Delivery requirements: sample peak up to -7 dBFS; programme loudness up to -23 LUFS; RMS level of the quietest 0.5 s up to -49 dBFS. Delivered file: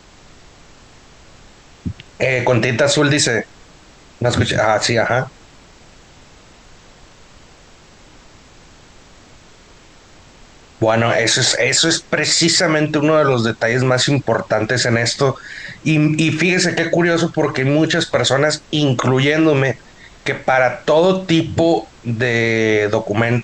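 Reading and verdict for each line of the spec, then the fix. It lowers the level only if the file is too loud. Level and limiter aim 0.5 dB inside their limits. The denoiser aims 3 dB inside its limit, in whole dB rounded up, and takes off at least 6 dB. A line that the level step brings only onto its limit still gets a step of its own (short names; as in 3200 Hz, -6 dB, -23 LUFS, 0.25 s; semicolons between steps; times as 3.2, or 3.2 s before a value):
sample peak -4.5 dBFS: fail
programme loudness -15.5 LUFS: fail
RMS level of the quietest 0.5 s -45 dBFS: fail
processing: gain -8 dB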